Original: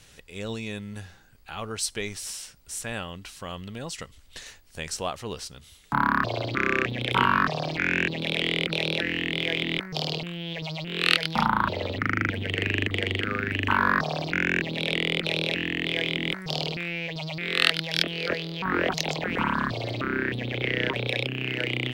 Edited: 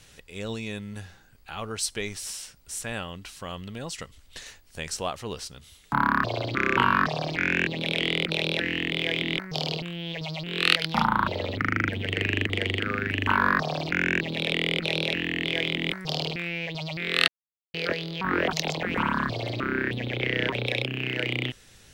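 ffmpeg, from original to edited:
-filter_complex "[0:a]asplit=4[a][b][c][d];[a]atrim=end=6.772[e];[b]atrim=start=7.178:end=17.69,asetpts=PTS-STARTPTS,afade=t=out:st=10.508:d=0.004:c=hsin[f];[c]atrim=start=17.69:end=18.15,asetpts=PTS-STARTPTS,volume=0[g];[d]atrim=start=18.15,asetpts=PTS-STARTPTS,afade=t=in:d=0.004:c=hsin[h];[f][g][h]concat=n=3:v=0:a=1[i];[e][i]acrossfade=d=0.004:c1=hsin:c2=hsin"

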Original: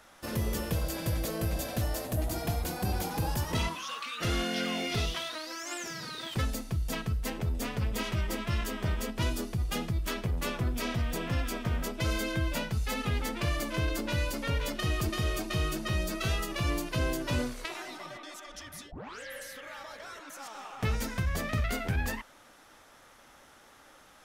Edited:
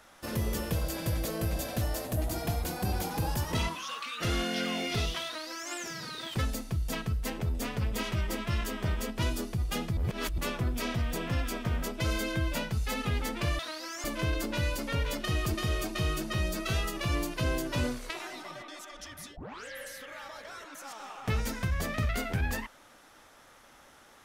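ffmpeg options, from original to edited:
-filter_complex "[0:a]asplit=5[a][b][c][d][e];[a]atrim=end=9.972[f];[b]atrim=start=9.968:end=10.382,asetpts=PTS-STARTPTS,areverse[g];[c]atrim=start=10.378:end=13.592[h];[d]atrim=start=5.258:end=5.712[i];[e]atrim=start=13.588[j];[f][g]acrossfade=d=0.004:c1=hsin:c2=hsin[k];[k][h]acrossfade=d=0.004:c1=hsin:c2=hsin[l];[l][i]acrossfade=d=0.004:c1=hsin:c2=hsin[m];[m][j]acrossfade=d=0.004:c1=hsin:c2=hsin"

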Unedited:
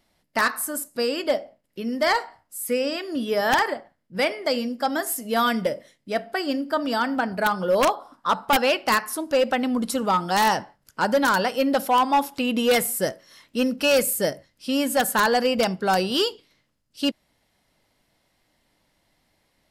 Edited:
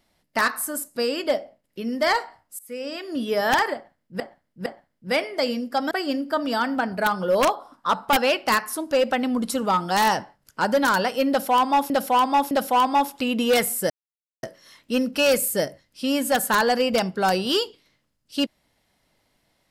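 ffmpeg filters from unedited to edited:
-filter_complex "[0:a]asplit=8[a][b][c][d][e][f][g][h];[a]atrim=end=2.59,asetpts=PTS-STARTPTS,afade=t=out:st=2.586:d=0.004:c=hsin:silence=0.0749894[i];[b]atrim=start=2.59:end=4.202,asetpts=PTS-STARTPTS,afade=t=in:d=0.61:silence=0.0749894[j];[c]atrim=start=3.738:end=4.202[k];[d]atrim=start=3.738:end=4.992[l];[e]atrim=start=6.308:end=12.302[m];[f]atrim=start=11.688:end=12.302[n];[g]atrim=start=11.688:end=13.08,asetpts=PTS-STARTPTS,afade=t=out:st=1.388:d=0.004:c=hsin,apad=pad_dur=0.53[o];[h]atrim=start=13.08,asetpts=PTS-STARTPTS,afade=t=in:d=0.004:c=hsin[p];[i][j]concat=n=2:v=0:a=1[q];[q][k]acrossfade=d=0.004:c1=hsin:c2=hsin[r];[r][l]acrossfade=d=0.004:c1=hsin:c2=hsin[s];[s][m]acrossfade=d=0.004:c1=hsin:c2=hsin[t];[t][n]acrossfade=d=0.004:c1=hsin:c2=hsin[u];[o][p]concat=n=2:v=0:a=1[v];[u][v]acrossfade=d=0.004:c1=hsin:c2=hsin"

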